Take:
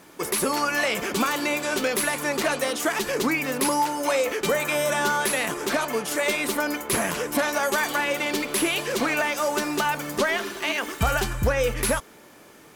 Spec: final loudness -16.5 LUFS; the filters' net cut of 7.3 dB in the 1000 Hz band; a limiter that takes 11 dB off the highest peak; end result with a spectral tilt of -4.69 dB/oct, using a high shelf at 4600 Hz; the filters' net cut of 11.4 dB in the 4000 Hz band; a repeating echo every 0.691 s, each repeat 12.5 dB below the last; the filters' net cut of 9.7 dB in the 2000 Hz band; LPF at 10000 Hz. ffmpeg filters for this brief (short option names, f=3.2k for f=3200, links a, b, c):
-af "lowpass=10k,equalizer=f=1k:t=o:g=-6.5,equalizer=f=2k:t=o:g=-7,equalizer=f=4k:t=o:g=-8.5,highshelf=f=4.6k:g=-7.5,alimiter=limit=-23dB:level=0:latency=1,aecho=1:1:691|1382|2073:0.237|0.0569|0.0137,volume=15.5dB"